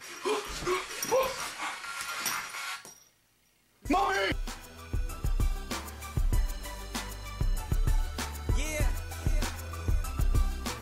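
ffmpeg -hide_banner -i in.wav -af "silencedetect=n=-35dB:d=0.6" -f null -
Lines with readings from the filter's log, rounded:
silence_start: 2.85
silence_end: 3.85 | silence_duration: 1.00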